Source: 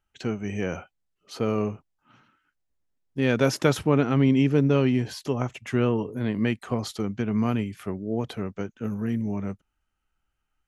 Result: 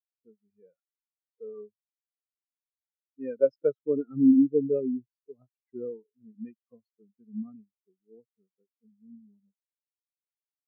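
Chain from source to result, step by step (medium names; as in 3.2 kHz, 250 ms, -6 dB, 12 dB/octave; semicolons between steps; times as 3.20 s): bass shelf 330 Hz -11.5 dB; spectral contrast expander 4:1; trim -2 dB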